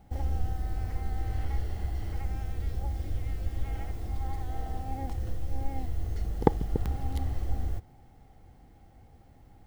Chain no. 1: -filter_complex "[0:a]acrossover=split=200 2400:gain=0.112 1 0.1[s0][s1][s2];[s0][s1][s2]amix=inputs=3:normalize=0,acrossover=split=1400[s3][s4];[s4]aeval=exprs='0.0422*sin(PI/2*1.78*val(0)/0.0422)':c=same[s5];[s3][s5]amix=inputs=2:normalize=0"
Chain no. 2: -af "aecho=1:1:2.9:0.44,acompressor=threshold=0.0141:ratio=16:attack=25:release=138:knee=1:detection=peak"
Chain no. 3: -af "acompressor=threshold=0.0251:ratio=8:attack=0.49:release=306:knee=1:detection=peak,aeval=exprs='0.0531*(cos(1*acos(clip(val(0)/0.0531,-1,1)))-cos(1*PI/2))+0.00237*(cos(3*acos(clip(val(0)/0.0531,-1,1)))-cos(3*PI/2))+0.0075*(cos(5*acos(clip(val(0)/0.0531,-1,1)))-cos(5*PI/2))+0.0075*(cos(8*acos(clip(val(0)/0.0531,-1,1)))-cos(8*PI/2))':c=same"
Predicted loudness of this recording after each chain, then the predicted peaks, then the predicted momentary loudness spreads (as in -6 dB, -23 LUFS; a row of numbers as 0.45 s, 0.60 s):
-40.5 LUFS, -44.5 LUFS, -40.5 LUFS; -5.0 dBFS, -15.5 dBFS, -26.5 dBFS; 9 LU, 13 LU, 14 LU